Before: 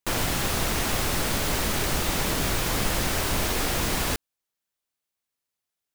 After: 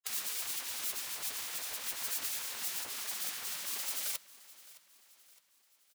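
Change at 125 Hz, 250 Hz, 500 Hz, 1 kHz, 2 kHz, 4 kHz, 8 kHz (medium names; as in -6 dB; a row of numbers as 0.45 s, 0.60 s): under -35 dB, -31.0 dB, -25.5 dB, -19.5 dB, -15.0 dB, -11.0 dB, -7.5 dB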